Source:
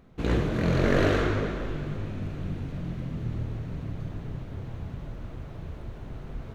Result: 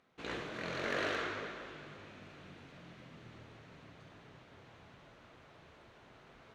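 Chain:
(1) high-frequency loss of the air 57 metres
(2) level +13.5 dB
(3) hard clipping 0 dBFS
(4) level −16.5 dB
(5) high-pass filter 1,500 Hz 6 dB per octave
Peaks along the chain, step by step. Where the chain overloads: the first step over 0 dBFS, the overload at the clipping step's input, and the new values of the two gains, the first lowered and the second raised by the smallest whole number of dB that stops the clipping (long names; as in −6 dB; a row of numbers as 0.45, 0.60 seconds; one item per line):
−9.5, +4.0, 0.0, −16.5, −21.0 dBFS
step 2, 4.0 dB
step 2 +9.5 dB, step 4 −12.5 dB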